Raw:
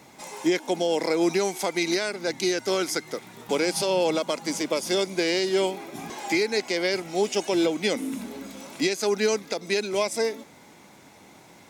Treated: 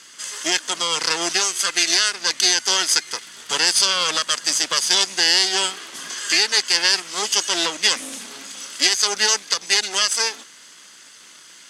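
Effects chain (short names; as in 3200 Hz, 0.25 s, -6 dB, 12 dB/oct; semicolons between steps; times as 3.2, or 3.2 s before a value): minimum comb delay 0.63 ms; weighting filter ITU-R 468; gain +3 dB; Vorbis 128 kbps 48000 Hz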